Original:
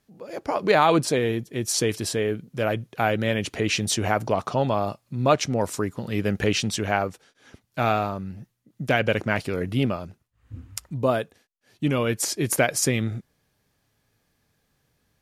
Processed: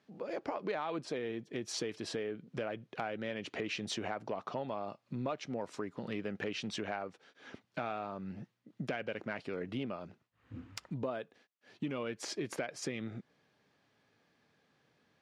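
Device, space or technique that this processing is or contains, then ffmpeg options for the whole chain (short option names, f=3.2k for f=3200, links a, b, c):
AM radio: -af "highpass=190,lowpass=3.9k,acompressor=threshold=-37dB:ratio=5,asoftclip=type=tanh:threshold=-23dB,volume=1dB"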